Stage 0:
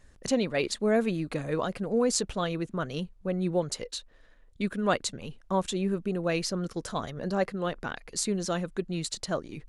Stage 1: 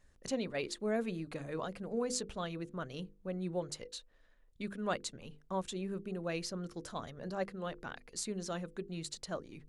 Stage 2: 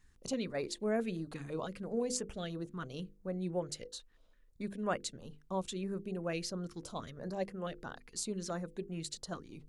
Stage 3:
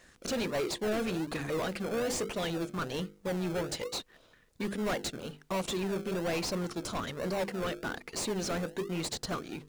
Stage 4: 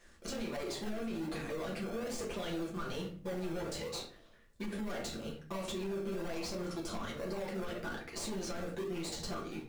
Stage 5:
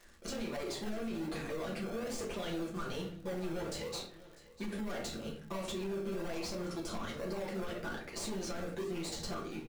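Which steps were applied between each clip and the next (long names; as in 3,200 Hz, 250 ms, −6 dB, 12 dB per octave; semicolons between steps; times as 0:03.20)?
mains-hum notches 50/100/150/200/250/300/350/400/450/500 Hz; level −9 dB
notch on a step sequencer 6 Hz 590–4,000 Hz; level +1 dB
mid-hump overdrive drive 30 dB, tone 6,700 Hz, clips at −18 dBFS; in parallel at −5 dB: sample-and-hold swept by an LFO 36×, swing 60% 1.2 Hz; on the sum: level −8 dB
rectangular room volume 33 cubic metres, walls mixed, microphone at 0.8 metres; brickwall limiter −23 dBFS, peak gain reduction 10.5 dB; level −7.5 dB
surface crackle 74 per second −48 dBFS; single-tap delay 647 ms −19 dB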